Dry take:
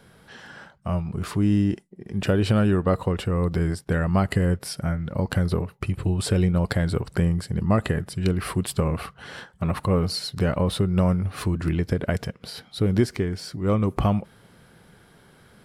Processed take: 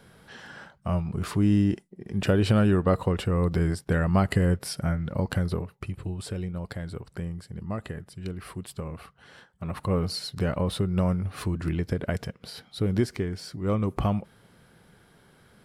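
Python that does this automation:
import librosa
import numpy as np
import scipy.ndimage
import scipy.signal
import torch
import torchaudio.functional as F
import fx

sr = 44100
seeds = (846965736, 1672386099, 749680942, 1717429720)

y = fx.gain(x, sr, db=fx.line((5.07, -1.0), (6.41, -12.0), (9.5, -12.0), (9.91, -4.0)))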